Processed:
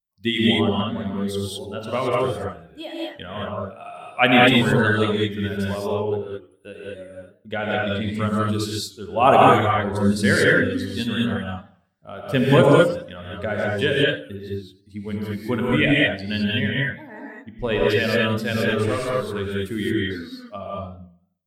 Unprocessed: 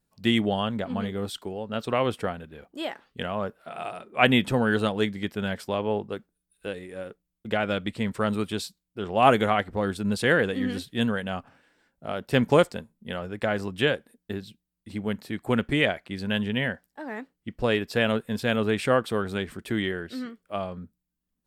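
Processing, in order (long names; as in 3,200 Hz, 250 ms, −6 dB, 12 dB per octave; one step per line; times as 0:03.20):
spectral dynamics exaggerated over time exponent 1.5
hum removal 58.03 Hz, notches 15
0:18.70–0:19.33: tube saturation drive 20 dB, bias 0.8
reverb whose tail is shaped and stops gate 240 ms rising, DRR −4.5 dB
feedback echo with a swinging delay time 91 ms, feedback 35%, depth 155 cents, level −18.5 dB
level +4 dB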